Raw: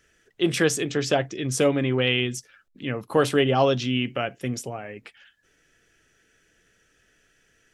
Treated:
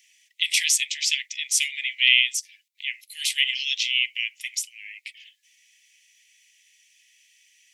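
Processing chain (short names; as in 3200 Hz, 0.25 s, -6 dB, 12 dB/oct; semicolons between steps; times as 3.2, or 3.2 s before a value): steep high-pass 2000 Hz 96 dB/oct; gain +8.5 dB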